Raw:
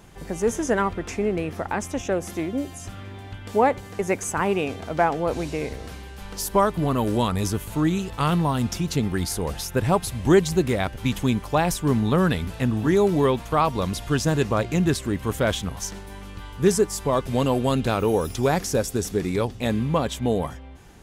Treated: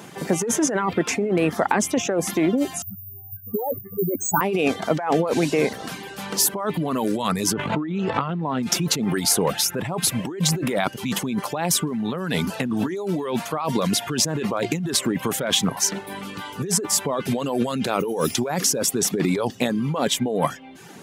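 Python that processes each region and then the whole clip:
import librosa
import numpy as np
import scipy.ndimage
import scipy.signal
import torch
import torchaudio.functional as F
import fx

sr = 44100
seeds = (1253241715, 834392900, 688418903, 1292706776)

y = fx.chain(x, sr, fx.spec_expand(power=3.8),
    fx.resample_bad(factor=3, down='none', up='zero_stuff'),
    fx.lowpass(hz=2600.0, slope=6), at=(2.82, 4.41))
y = fx.chain(y, sr, fx.lowpass(hz=2400.0, slope=12),
    fx.sustainer(db_per_s=23.0), at=(7.53, 8.63))
y = fx.over_compress(y, sr, threshold_db=-27.0, ratio=-1.0)
y = scipy.signal.sosfilt(scipy.signal.butter(4, 150.0, 'highpass', fs=sr, output='sos'), y)
y = fx.dereverb_blind(y, sr, rt60_s=0.66)
y = F.gain(torch.from_numpy(y), 6.5).numpy()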